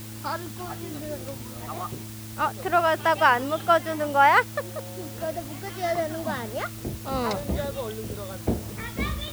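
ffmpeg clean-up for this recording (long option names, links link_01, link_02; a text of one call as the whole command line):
ffmpeg -i in.wav -af "bandreject=frequency=109.5:width_type=h:width=4,bandreject=frequency=219:width_type=h:width=4,bandreject=frequency=328.5:width_type=h:width=4,afwtdn=0.0063" out.wav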